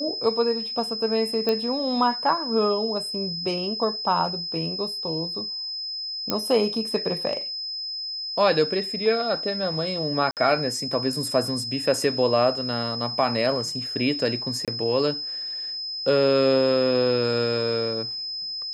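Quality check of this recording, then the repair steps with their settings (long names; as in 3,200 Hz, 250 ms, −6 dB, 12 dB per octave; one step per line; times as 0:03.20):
whistle 5,100 Hz −29 dBFS
0:01.49: click −12 dBFS
0:06.30: click −8 dBFS
0:10.31–0:10.37: drop-out 58 ms
0:14.65–0:14.68: drop-out 27 ms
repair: click removal
notch filter 5,100 Hz, Q 30
repair the gap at 0:10.31, 58 ms
repair the gap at 0:14.65, 27 ms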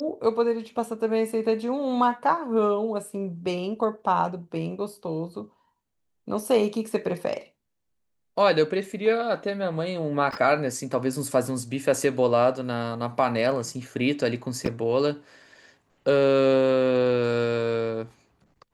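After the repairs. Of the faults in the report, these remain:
none of them is left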